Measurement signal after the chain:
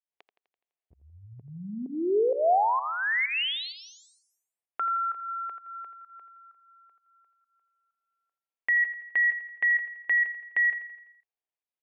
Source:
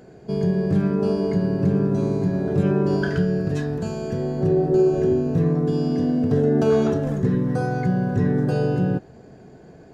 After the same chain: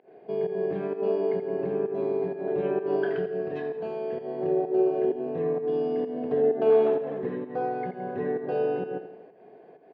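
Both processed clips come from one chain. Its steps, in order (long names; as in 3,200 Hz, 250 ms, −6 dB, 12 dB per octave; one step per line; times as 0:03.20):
fake sidechain pumping 129 BPM, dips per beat 1, −20 dB, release 171 ms
loudspeaker in its box 400–2,900 Hz, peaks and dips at 420 Hz +5 dB, 710 Hz +5 dB, 1,400 Hz −8 dB
on a send: repeating echo 84 ms, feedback 54%, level −11.5 dB
on the sum: level −3.5 dB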